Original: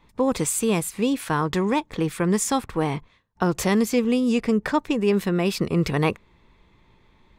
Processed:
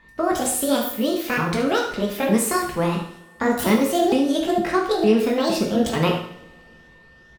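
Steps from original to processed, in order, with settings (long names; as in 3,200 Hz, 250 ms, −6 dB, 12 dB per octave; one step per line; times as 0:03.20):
pitch shifter swept by a sawtooth +9 semitones, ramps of 458 ms
steady tone 1,800 Hz −51 dBFS
on a send: single-tap delay 72 ms −11 dB
on the sum: coupled-rooms reverb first 0.62 s, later 3.3 s, from −27 dB, DRR 0.5 dB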